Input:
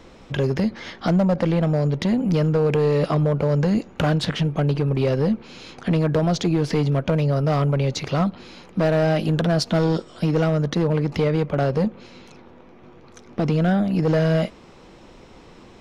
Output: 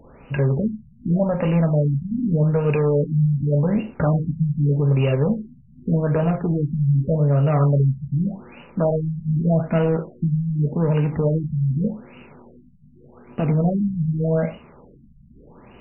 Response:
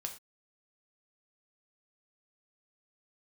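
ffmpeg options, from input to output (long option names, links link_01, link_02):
-filter_complex "[0:a]aexciter=amount=3.9:drive=7.1:freq=3000[link_01];[1:a]atrim=start_sample=2205[link_02];[link_01][link_02]afir=irnorm=-1:irlink=0,afftfilt=real='re*lt(b*sr/1024,210*pow(3000/210,0.5+0.5*sin(2*PI*0.84*pts/sr)))':imag='im*lt(b*sr/1024,210*pow(3000/210,0.5+0.5*sin(2*PI*0.84*pts/sr)))':win_size=1024:overlap=0.75,volume=1.5dB"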